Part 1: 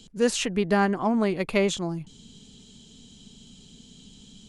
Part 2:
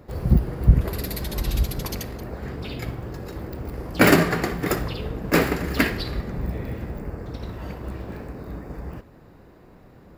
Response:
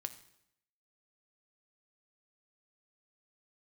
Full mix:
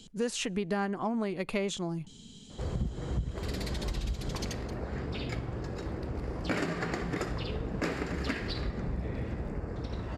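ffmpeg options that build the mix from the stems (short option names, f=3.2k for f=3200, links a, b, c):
-filter_complex "[0:a]volume=-2dB,asplit=2[a][b];[b]volume=-20dB[c];[1:a]lowpass=f=8.3k:w=0.5412,lowpass=f=8.3k:w=1.3066,acompressor=threshold=-24dB:ratio=2,adelay=2500,volume=-2.5dB[d];[2:a]atrim=start_sample=2205[e];[c][e]afir=irnorm=-1:irlink=0[f];[a][d][f]amix=inputs=3:normalize=0,acompressor=threshold=-30dB:ratio=3"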